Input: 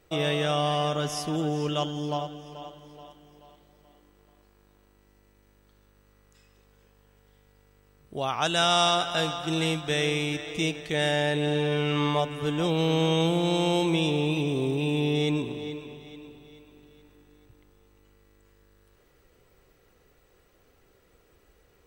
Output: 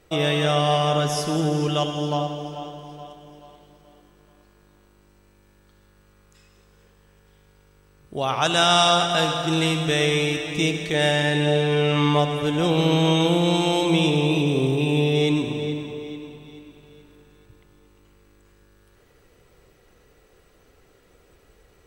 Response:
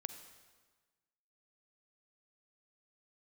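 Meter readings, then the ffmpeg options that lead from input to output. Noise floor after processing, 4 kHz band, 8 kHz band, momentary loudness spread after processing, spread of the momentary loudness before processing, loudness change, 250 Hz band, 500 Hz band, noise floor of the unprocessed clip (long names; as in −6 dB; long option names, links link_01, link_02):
−58 dBFS, +5.5 dB, +5.5 dB, 13 LU, 13 LU, +5.5 dB, +5.0 dB, +5.0 dB, −62 dBFS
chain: -filter_complex "[1:a]atrim=start_sample=2205,asetrate=27342,aresample=44100[link_01];[0:a][link_01]afir=irnorm=-1:irlink=0,volume=5.5dB"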